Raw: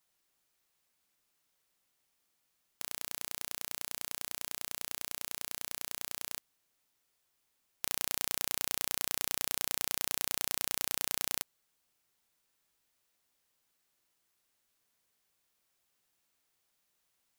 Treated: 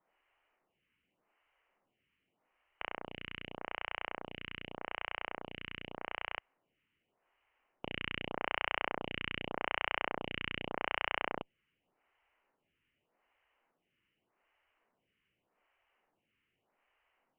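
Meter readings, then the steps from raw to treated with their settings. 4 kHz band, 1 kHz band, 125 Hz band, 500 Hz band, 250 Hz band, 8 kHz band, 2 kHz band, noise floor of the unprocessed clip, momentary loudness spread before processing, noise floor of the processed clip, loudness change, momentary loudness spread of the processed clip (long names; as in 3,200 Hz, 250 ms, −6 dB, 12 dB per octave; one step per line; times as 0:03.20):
−3.0 dB, +7.0 dB, +4.5 dB, +7.0 dB, +5.5 dB, below −40 dB, +5.5 dB, −78 dBFS, 6 LU, −84 dBFS, −4.5 dB, 10 LU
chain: Chebyshev low-pass with heavy ripple 3,000 Hz, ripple 3 dB
phaser with staggered stages 0.84 Hz
level +11 dB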